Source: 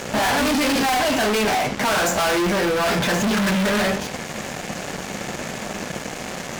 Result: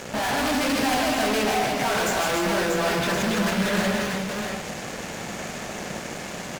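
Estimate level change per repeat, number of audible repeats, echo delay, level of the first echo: repeats not evenly spaced, 3, 152 ms, −5.0 dB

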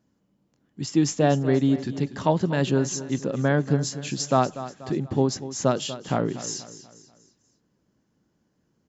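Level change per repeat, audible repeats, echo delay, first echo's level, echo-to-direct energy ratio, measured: −7.5 dB, 3, 242 ms, −14.0 dB, −13.0 dB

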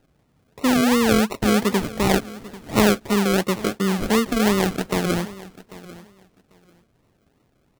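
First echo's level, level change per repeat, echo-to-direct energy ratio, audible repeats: −18.5 dB, −15.0 dB, −18.5 dB, 2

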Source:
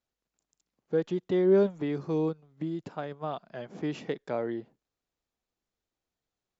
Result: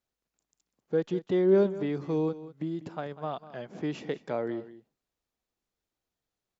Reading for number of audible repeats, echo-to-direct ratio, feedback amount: 1, −15.5 dB, repeats not evenly spaced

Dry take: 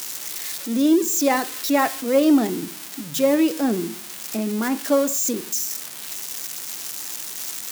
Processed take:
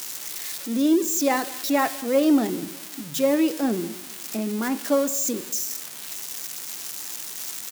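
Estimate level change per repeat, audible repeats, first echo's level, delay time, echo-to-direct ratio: −7.5 dB, 2, −21.0 dB, 201 ms, −20.0 dB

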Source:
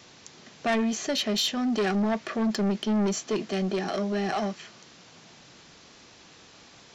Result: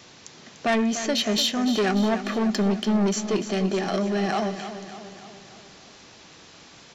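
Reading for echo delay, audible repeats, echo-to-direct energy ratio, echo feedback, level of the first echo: 295 ms, 5, −9.5 dB, 55%, −11.0 dB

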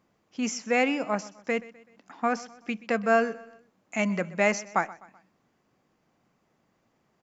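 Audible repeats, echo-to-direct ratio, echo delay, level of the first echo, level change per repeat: 3, −18.5 dB, 127 ms, −19.5 dB, −7.0 dB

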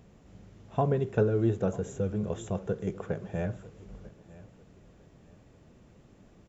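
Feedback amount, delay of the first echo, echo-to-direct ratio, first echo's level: 35%, 948 ms, −20.0 dB, −20.5 dB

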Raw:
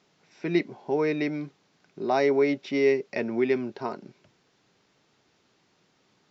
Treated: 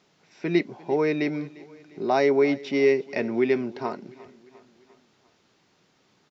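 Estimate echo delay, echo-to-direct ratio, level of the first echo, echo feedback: 350 ms, −19.5 dB, −21.0 dB, 54%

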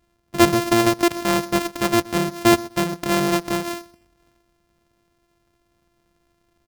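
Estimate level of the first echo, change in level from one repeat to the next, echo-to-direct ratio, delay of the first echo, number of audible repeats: −20.5 dB, −14.0 dB, −20.5 dB, 125 ms, 2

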